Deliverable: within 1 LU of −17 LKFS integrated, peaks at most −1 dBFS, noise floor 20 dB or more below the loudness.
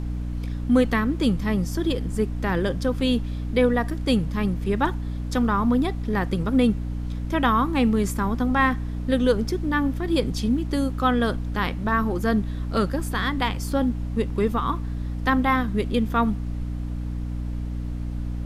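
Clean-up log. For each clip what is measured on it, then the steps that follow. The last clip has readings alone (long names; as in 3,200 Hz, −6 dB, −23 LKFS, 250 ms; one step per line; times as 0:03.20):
mains hum 60 Hz; hum harmonics up to 300 Hz; level of the hum −26 dBFS; background noise floor −30 dBFS; target noise floor −44 dBFS; integrated loudness −24.0 LKFS; sample peak −7.0 dBFS; target loudness −17.0 LKFS
→ mains-hum notches 60/120/180/240/300 Hz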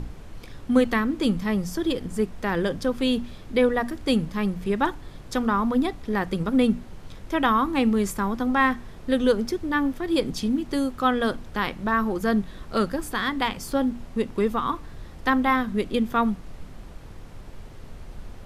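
mains hum none found; background noise floor −42 dBFS; target noise floor −45 dBFS
→ noise reduction from a noise print 6 dB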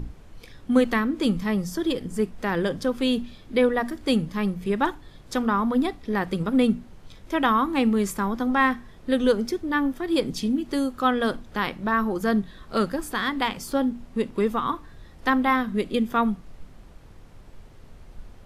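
background noise floor −47 dBFS; integrated loudness −25.0 LKFS; sample peak −7.0 dBFS; target loudness −17.0 LKFS
→ level +8 dB
brickwall limiter −1 dBFS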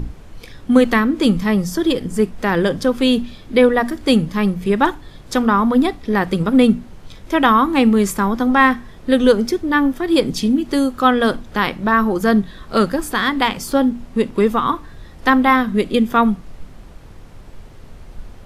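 integrated loudness −17.0 LKFS; sample peak −1.0 dBFS; background noise floor −39 dBFS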